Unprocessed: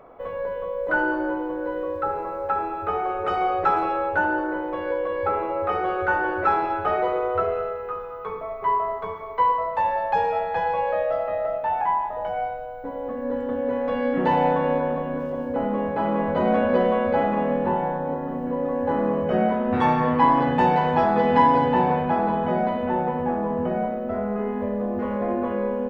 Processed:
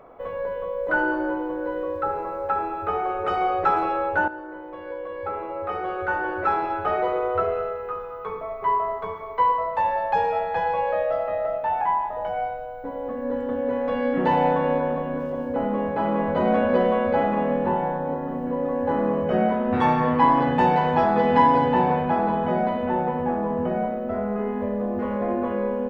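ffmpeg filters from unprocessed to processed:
ffmpeg -i in.wav -filter_complex "[0:a]asplit=2[link_01][link_02];[link_01]atrim=end=4.28,asetpts=PTS-STARTPTS,afade=type=out:start_time=4.276:duration=0.004:curve=hsin:silence=0.237137[link_03];[link_02]atrim=start=4.28,asetpts=PTS-STARTPTS,afade=type=in:duration=2.99:silence=0.237137[link_04];[link_03][link_04]concat=n=2:v=0:a=1" out.wav

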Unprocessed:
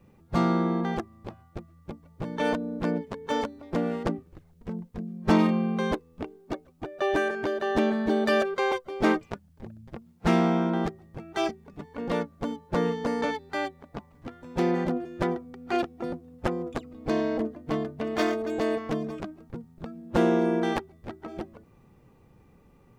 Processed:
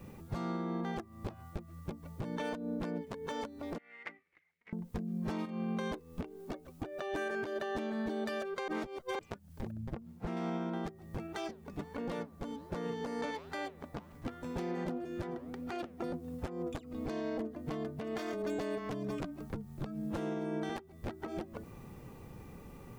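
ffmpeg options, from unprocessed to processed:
ffmpeg -i in.wav -filter_complex "[0:a]asettb=1/sr,asplit=3[link_01][link_02][link_03];[link_01]atrim=end=3.784[link_04];[link_02]atrim=start=3.78:end=4.73,asetpts=PTS-STARTPTS,afade=type=in:duration=0.004:curve=qsin,afade=type=out:start_time=0.946:duration=0.004:curve=qsin,bandpass=frequency=2100:width_type=q:width=9.5[link_05];[link_03]atrim=start=4.726[link_06];[link_04][link_05]acrossfade=duration=0.004:curve1=hsin:curve2=qsin[link_07];[link_07][link_06]acrossfade=duration=0.004:curve1=qsin:curve2=hsin,asettb=1/sr,asplit=3[link_08][link_09][link_10];[link_08]atrim=end=5.454[link_11];[link_09]atrim=start=5.45:end=7.56,asetpts=PTS-STARTPTS,afade=type=in:duration=0.004:curve=qsin,afade=type=out:start_time=2.106:duration=0.004:curve=qsin,acompressor=threshold=-27dB:ratio=6:attack=3.2:release=140:knee=1:detection=peak[link_12];[link_10]atrim=start=7.556[link_13];[link_11][link_12]acrossfade=duration=0.004:curve1=hsin:curve2=qsin[link_14];[link_14][link_13]acrossfade=duration=0.004:curve1=qsin:curve2=hsin,asettb=1/sr,asplit=3[link_15][link_16][link_17];[link_15]atrim=end=9.714[link_18];[link_16]atrim=start=9.71:end=10.37,asetpts=PTS-STARTPTS,afade=type=in:duration=0.004:curve=qsin,afade=type=out:start_time=0.656:duration=0.004:curve=qsin,highshelf=frequency=2400:gain=-10[link_19];[link_17]atrim=start=10.366[link_20];[link_18][link_19]acrossfade=duration=0.004:curve1=hsin:curve2=qsin[link_21];[link_21][link_20]acrossfade=duration=0.004:curve1=qsin:curve2=hsin,asplit=3[link_22][link_23][link_24];[link_22]afade=type=out:start_time=11.26:duration=0.02[link_25];[link_23]flanger=delay=2.4:depth=8.8:regen=-90:speed=1.4:shape=triangular,afade=type=in:start_time=11.26:duration=0.02,afade=type=out:start_time=16.13:duration=0.02[link_26];[link_24]afade=type=in:start_time=16.13:duration=0.02[link_27];[link_25][link_26][link_27]amix=inputs=3:normalize=0,asettb=1/sr,asplit=3[link_28][link_29][link_30];[link_28]atrim=end=18.334[link_31];[link_29]atrim=start=18.33:end=20.7,asetpts=PTS-STARTPTS,afade=type=in:duration=0.004:curve=qsin,afade=type=out:start_time=2.366:duration=0.004:curve=qsin,afreqshift=-21[link_32];[link_30]atrim=start=20.696[link_33];[link_31][link_32]acrossfade=duration=0.004:curve1=hsin:curve2=qsin[link_34];[link_34][link_33]acrossfade=duration=0.004:curve1=qsin:curve2=hsin,asplit=3[link_35][link_36][link_37];[link_35]atrim=end=8.682[link_38];[link_36]atrim=start=8.678:end=9.192,asetpts=PTS-STARTPTS,areverse[link_39];[link_37]atrim=start=9.188[link_40];[link_38][link_39]acrossfade=duration=0.004:curve1=hsin:curve2=hsin[link_41];[link_41][link_40]acrossfade=duration=0.004:curve1=hsin:curve2=hsin,highshelf=frequency=6500:gain=7,acompressor=threshold=-40dB:ratio=6,alimiter=level_in=11dB:limit=-24dB:level=0:latency=1:release=180,volume=-11dB,volume=7.5dB" out.wav

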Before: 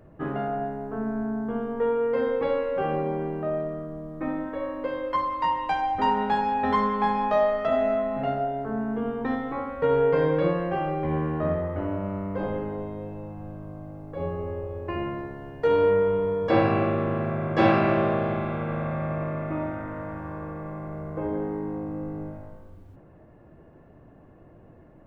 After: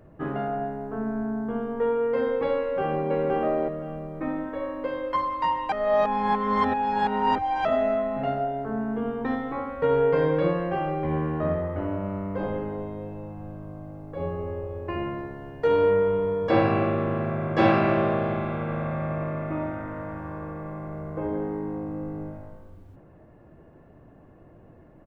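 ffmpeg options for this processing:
ffmpeg -i in.wav -filter_complex "[0:a]asplit=2[link_01][link_02];[link_02]afade=type=in:start_time=2.58:duration=0.01,afade=type=out:start_time=3.16:duration=0.01,aecho=0:1:520|1040|1560:0.891251|0.17825|0.03565[link_03];[link_01][link_03]amix=inputs=2:normalize=0,asplit=3[link_04][link_05][link_06];[link_04]atrim=end=5.722[link_07];[link_05]atrim=start=5.718:end=7.652,asetpts=PTS-STARTPTS,areverse[link_08];[link_06]atrim=start=7.648[link_09];[link_07][link_08]acrossfade=duration=0.004:curve1=hsin:curve2=hsin[link_10];[link_10][link_09]acrossfade=duration=0.004:curve1=hsin:curve2=hsin" out.wav

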